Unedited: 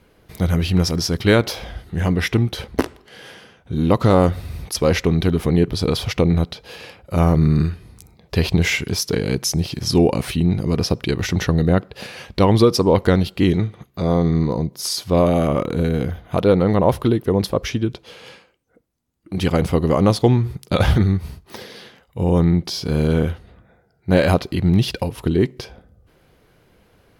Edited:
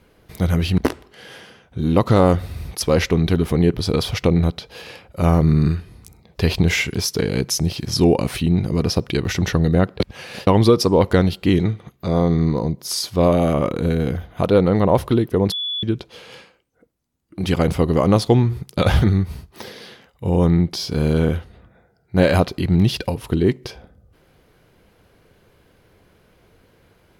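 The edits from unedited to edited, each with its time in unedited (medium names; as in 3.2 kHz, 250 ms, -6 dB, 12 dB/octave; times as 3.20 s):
0.78–2.72 s: delete
11.94–12.41 s: reverse
17.46–17.77 s: bleep 3.43 kHz -22 dBFS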